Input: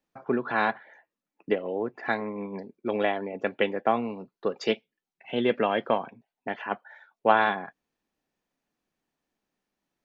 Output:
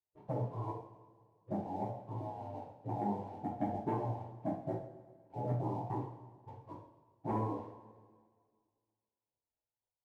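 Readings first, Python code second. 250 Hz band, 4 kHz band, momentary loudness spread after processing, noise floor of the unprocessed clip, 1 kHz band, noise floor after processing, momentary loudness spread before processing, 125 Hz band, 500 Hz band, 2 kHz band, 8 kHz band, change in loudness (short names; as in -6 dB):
-8.0 dB, under -30 dB, 16 LU, under -85 dBFS, -12.0 dB, under -85 dBFS, 12 LU, +5.5 dB, -14.5 dB, -32.0 dB, n/a, -11.5 dB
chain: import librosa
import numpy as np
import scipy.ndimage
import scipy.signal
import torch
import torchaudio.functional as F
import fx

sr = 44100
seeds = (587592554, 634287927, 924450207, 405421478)

p1 = fx.spec_quant(x, sr, step_db=15)
p2 = scipy.signal.sosfilt(scipy.signal.butter(12, 880.0, 'lowpass', fs=sr, output='sos'), p1)
p3 = fx.spec_gate(p2, sr, threshold_db=-15, keep='weak')
p4 = fx.low_shelf(p3, sr, hz=280.0, db=6.5)
p5 = fx.leveller(p4, sr, passes=1)
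p6 = p5 + fx.echo_feedback(p5, sr, ms=126, feedback_pct=60, wet_db=-20.5, dry=0)
p7 = fx.rev_double_slope(p6, sr, seeds[0], early_s=0.53, late_s=2.0, knee_db=-17, drr_db=-4.5)
y = F.gain(torch.from_numpy(p7), -5.0).numpy()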